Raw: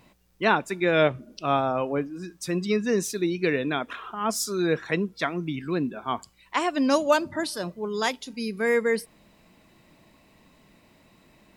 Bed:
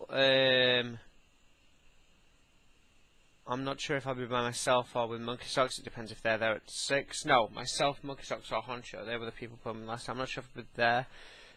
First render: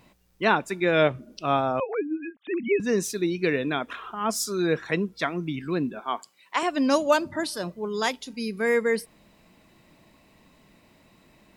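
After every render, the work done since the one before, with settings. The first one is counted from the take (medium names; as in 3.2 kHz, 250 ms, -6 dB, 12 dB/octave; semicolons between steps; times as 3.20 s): 1.80–2.80 s: formants replaced by sine waves; 6.00–6.63 s: high-pass 360 Hz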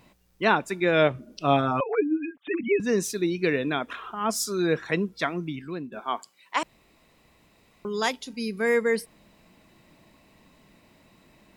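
1.40–2.61 s: comb 6.9 ms, depth 90%; 5.31–5.92 s: fade out, to -13 dB; 6.63–7.85 s: room tone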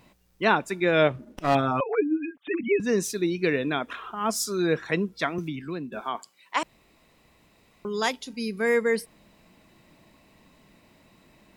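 1.14–1.55 s: sliding maximum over 9 samples; 3.93–4.57 s: short-mantissa float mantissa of 6-bit; 5.38–6.15 s: three bands compressed up and down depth 70%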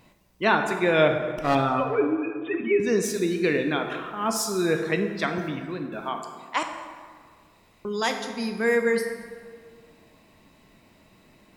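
plate-style reverb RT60 1.8 s, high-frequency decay 0.6×, DRR 4.5 dB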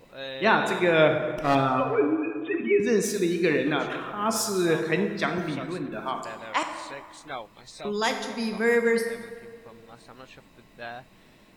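add bed -10.5 dB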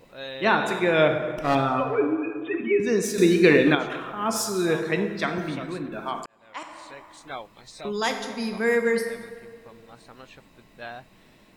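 3.18–3.75 s: gain +7 dB; 6.26–7.34 s: fade in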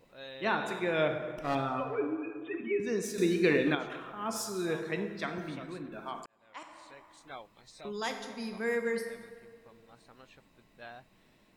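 trim -9.5 dB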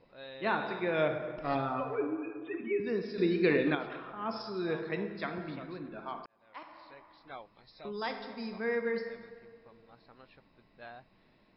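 Chebyshev low-pass 5.3 kHz, order 10; peaking EQ 3.1 kHz -4.5 dB 0.66 oct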